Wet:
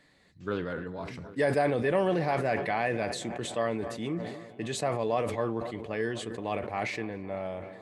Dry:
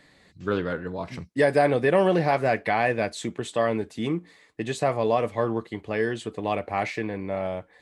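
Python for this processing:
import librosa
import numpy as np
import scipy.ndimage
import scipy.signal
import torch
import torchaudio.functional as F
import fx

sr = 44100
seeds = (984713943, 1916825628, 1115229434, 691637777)

y = fx.echo_filtered(x, sr, ms=257, feedback_pct=74, hz=3300.0, wet_db=-20.0)
y = fx.sustainer(y, sr, db_per_s=50.0)
y = F.gain(torch.from_numpy(y), -6.5).numpy()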